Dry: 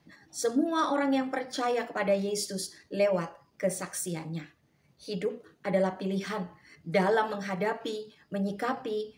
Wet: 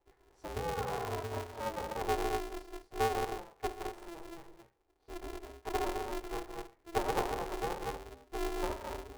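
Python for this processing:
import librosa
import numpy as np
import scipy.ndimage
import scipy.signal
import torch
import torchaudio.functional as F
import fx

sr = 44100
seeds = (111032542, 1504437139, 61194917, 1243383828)

y = fx.double_bandpass(x, sr, hz=380.0, octaves=1.6)
y = fx.rev_gated(y, sr, seeds[0], gate_ms=260, shape='rising', drr_db=3.0)
y = y * np.sign(np.sin(2.0 * np.pi * 170.0 * np.arange(len(y)) / sr))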